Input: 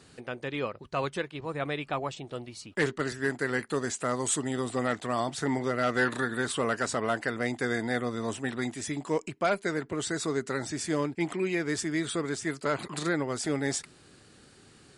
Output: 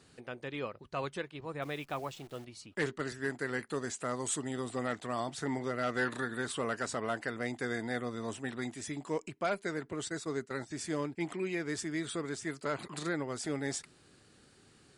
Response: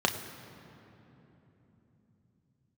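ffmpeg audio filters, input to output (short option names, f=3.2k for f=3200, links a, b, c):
-filter_complex "[0:a]asettb=1/sr,asplit=3[a][b][c];[a]atrim=end=1.624[d];[b]atrim=start=1.62:end=2.45,asetpts=PTS-STARTPTS,afade=t=in:d=0.004:c=qsin,afade=t=out:st=0.826:d=0.004:c=qsin,acrusher=bits=9:dc=4:mix=0:aa=0.000001[e];[c]atrim=start=2.446[f];[d][e]acrossfade=d=0.004:c1=hsin:c2=qsin[g];[g][f]acrossfade=d=0.004:c1=qsin:c2=hsin,asplit=3[h][i][j];[h]afade=t=out:st=10.07:d=0.02[k];[i]agate=range=-14dB:threshold=-32dB:ratio=16:detection=peak,afade=t=in:st=10.07:d=0.02,afade=t=out:st=10.7:d=0.02[l];[j]afade=t=in:st=10.7:d=0.02[m];[k][l][m]amix=inputs=3:normalize=0,volume=-6dB"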